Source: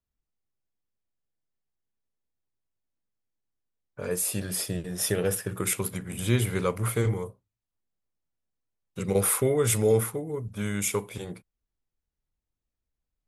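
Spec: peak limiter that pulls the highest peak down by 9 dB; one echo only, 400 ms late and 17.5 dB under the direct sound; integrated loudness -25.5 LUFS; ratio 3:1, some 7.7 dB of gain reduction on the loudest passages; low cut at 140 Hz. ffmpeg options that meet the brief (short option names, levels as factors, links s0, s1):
-af "highpass=140,acompressor=threshold=0.0355:ratio=3,alimiter=level_in=1.41:limit=0.0631:level=0:latency=1,volume=0.708,aecho=1:1:400:0.133,volume=3.55"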